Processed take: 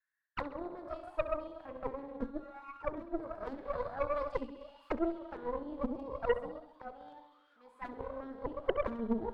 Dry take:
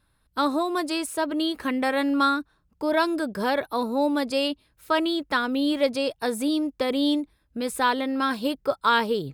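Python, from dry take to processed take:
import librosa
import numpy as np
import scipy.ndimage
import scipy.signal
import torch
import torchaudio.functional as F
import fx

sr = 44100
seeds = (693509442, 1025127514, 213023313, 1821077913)

p1 = fx.tilt_shelf(x, sr, db=-9.0, hz=840.0, at=(3.43, 4.93))
p2 = fx.rev_schroeder(p1, sr, rt60_s=1.5, comb_ms=33, drr_db=4.0)
p3 = fx.quant_companded(p2, sr, bits=2)
p4 = p2 + F.gain(torch.from_numpy(p3), -9.0).numpy()
p5 = fx.comb_fb(p4, sr, f0_hz=63.0, decay_s=0.27, harmonics='all', damping=0.0, mix_pct=70, at=(6.49, 7.86))
p6 = fx.auto_wah(p5, sr, base_hz=230.0, top_hz=1800.0, q=13.0, full_db=-14.5, direction='down')
p7 = fx.cheby_harmonics(p6, sr, harmonics=(3, 6), levels_db=(-16, -16), full_scale_db=-18.0)
p8 = p7 + fx.echo_feedback(p7, sr, ms=66, feedback_pct=58, wet_db=-16, dry=0)
y = F.gain(torch.from_numpy(p8), 1.0).numpy()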